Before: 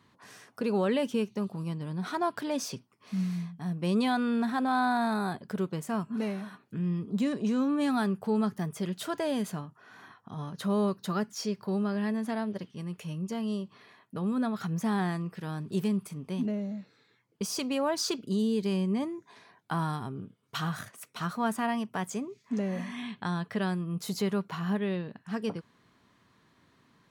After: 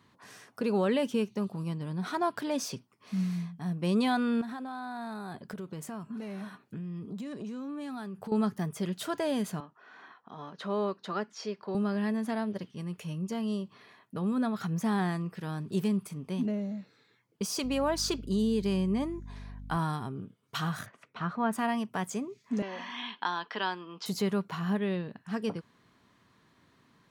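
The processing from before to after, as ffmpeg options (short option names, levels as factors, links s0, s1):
-filter_complex "[0:a]asettb=1/sr,asplit=3[s0][s1][s2];[s0]atrim=end=4.414[s3];[s1]atrim=start=4.41:end=8.32,asetpts=PTS-STARTPTS,afade=t=in:d=0.004:c=qsin,afade=t=out:st=3.906:d=0.004:c=qsin,acompressor=threshold=0.0178:ratio=12:attack=3.2:release=140:knee=1:detection=peak[s4];[s2]atrim=start=8.316[s5];[s3][s4]acrossfade=d=0.004:c1=hsin:c2=qsin[s6];[s6][s5]acrossfade=d=0.004:c1=qsin:c2=hsin,asettb=1/sr,asplit=3[s7][s8][s9];[s7]atrim=end=9.604[s10];[s8]atrim=start=9.6:end=11.75,asetpts=PTS-STARTPTS,afade=t=in:d=0.004:c=qsin,afade=t=out:st=2.146:d=0.004:c=qsin,highpass=310,lowpass=4100[s11];[s9]atrim=start=11.746[s12];[s10][s11]acrossfade=d=0.004:c1=hsin:c2=qsin[s13];[s13][s12]acrossfade=d=0.004:c1=qsin:c2=hsin,asettb=1/sr,asplit=3[s14][s15][s16];[s14]atrim=end=17.644[s17];[s15]atrim=start=17.64:end=19.77,asetpts=PTS-STARTPTS,afade=t=in:d=0.004:c=qsin,afade=t=out:st=2.126:d=0.004:c=qsin,aeval=exprs='val(0)+0.00794*(sin(2*PI*50*n/s)+sin(2*PI*2*50*n/s)/2+sin(2*PI*3*50*n/s)/3+sin(2*PI*4*50*n/s)/4+sin(2*PI*5*50*n/s)/5)':c=same[s18];[s16]atrim=start=19.766[s19];[s17][s18]acrossfade=d=0.004:c1=hsin:c2=qsin[s20];[s20][s19]acrossfade=d=0.004:c1=qsin:c2=hsin,asettb=1/sr,asplit=3[s21][s22][s23];[s21]atrim=end=20.864[s24];[s22]atrim=start=20.86:end=21.53,asetpts=PTS-STARTPTS,afade=t=in:d=0.004:c=qsin,afade=t=out:st=0.666:d=0.004:c=qsin,lowpass=2400[s25];[s23]atrim=start=21.526[s26];[s24][s25]acrossfade=d=0.004:c1=hsin:c2=qsin[s27];[s27][s26]acrossfade=d=0.004:c1=qsin:c2=hsin,asettb=1/sr,asplit=3[s28][s29][s30];[s28]atrim=end=22.624[s31];[s29]atrim=start=22.62:end=24.06,asetpts=PTS-STARTPTS,afade=t=in:d=0.004:c=qsin,afade=t=out:st=1.436:d=0.004:c=qsin,highpass=f=300:w=0.5412,highpass=f=300:w=1.3066,equalizer=f=400:t=q:w=4:g=-4,equalizer=f=590:t=q:w=4:g=-5,equalizer=f=940:t=q:w=4:g=9,equalizer=f=1500:t=q:w=4:g=4,equalizer=f=3100:t=q:w=4:g=9,equalizer=f=5100:t=q:w=4:g=6,lowpass=f=5600:w=0.5412,lowpass=f=5600:w=1.3066[s32];[s30]atrim=start=24.056[s33];[s31][s32]acrossfade=d=0.004:c1=hsin:c2=qsin[s34];[s34][s33]acrossfade=d=0.004:c1=qsin:c2=hsin"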